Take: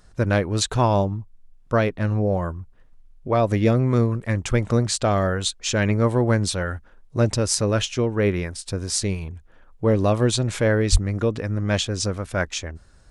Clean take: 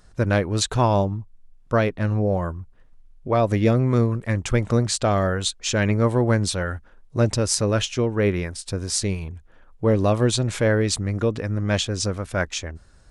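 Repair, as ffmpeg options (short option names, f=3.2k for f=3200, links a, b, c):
-filter_complex "[0:a]asplit=3[a][b][c];[a]afade=t=out:st=10.91:d=0.02[d];[b]highpass=f=140:w=0.5412,highpass=f=140:w=1.3066,afade=t=in:st=10.91:d=0.02,afade=t=out:st=11.03:d=0.02[e];[c]afade=t=in:st=11.03:d=0.02[f];[d][e][f]amix=inputs=3:normalize=0"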